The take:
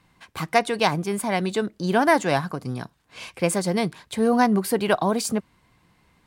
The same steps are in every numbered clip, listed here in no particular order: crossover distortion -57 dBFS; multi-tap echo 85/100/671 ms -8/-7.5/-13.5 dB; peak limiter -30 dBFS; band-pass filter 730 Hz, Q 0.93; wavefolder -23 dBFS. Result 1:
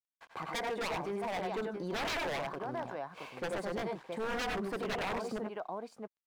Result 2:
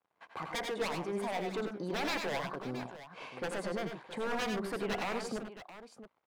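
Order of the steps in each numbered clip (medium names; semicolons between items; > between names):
band-pass filter > crossover distortion > multi-tap echo > wavefolder > peak limiter; crossover distortion > band-pass filter > wavefolder > peak limiter > multi-tap echo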